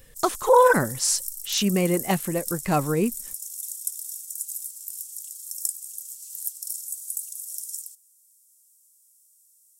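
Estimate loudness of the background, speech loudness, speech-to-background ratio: -32.5 LUFS, -22.5 LUFS, 10.0 dB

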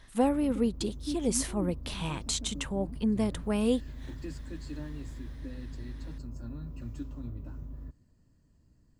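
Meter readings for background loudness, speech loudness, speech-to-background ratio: -41.5 LUFS, -31.0 LUFS, 10.5 dB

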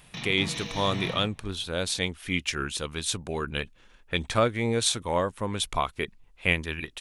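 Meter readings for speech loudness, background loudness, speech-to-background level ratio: -28.5 LUFS, -35.5 LUFS, 7.0 dB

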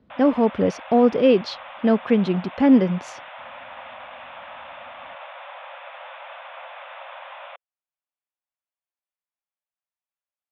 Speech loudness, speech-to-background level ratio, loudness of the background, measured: -19.5 LUFS, 19.5 dB, -39.0 LUFS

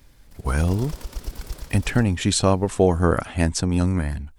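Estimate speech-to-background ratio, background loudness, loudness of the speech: 16.5 dB, -38.5 LUFS, -22.0 LUFS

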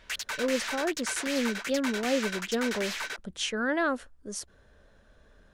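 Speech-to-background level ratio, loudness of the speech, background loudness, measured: 3.0 dB, -31.0 LUFS, -34.0 LUFS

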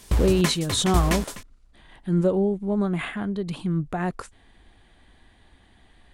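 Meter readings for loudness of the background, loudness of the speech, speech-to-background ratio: -27.0 LUFS, -24.5 LUFS, 2.5 dB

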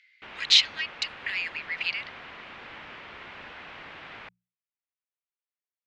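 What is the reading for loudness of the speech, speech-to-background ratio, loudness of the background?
-25.0 LUFS, 18.0 dB, -43.0 LUFS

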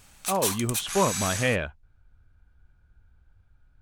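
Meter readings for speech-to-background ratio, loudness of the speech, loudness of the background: 2.0 dB, -27.5 LUFS, -29.5 LUFS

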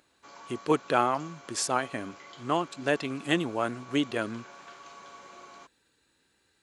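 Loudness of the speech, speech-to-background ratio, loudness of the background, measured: -29.5 LUFS, 19.0 dB, -48.5 LUFS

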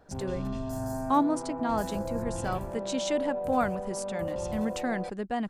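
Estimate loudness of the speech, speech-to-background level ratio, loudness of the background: -32.0 LUFS, 3.0 dB, -35.0 LUFS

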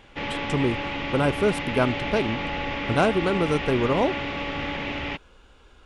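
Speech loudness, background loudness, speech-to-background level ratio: -25.0 LUFS, -29.5 LUFS, 4.5 dB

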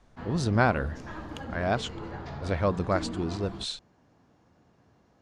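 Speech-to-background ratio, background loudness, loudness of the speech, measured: 10.0 dB, -39.5 LUFS, -29.5 LUFS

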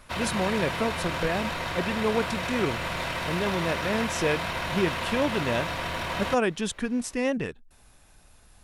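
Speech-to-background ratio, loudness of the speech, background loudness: 1.0 dB, -29.5 LUFS, -30.5 LUFS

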